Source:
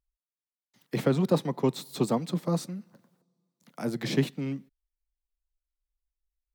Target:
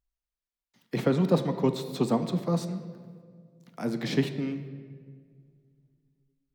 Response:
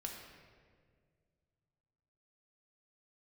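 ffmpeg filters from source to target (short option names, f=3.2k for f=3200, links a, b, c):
-filter_complex "[0:a]asplit=2[a][b];[1:a]atrim=start_sample=2205,lowpass=7k[c];[b][c]afir=irnorm=-1:irlink=0,volume=0dB[d];[a][d]amix=inputs=2:normalize=0,volume=-4dB"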